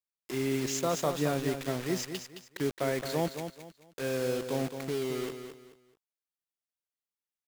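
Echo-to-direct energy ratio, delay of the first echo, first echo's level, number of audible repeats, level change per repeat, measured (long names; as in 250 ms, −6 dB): −8.0 dB, 217 ms, −8.5 dB, 3, −11.0 dB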